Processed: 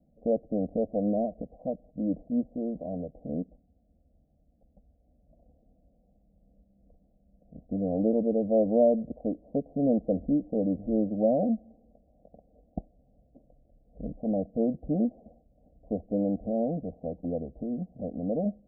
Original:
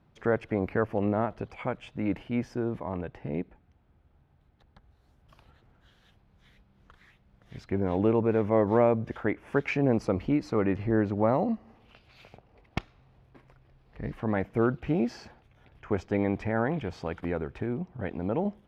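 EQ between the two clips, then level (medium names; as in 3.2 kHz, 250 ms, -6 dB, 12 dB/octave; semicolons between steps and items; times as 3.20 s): steep low-pass 800 Hz 96 dB/octave; static phaser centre 570 Hz, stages 8; +2.5 dB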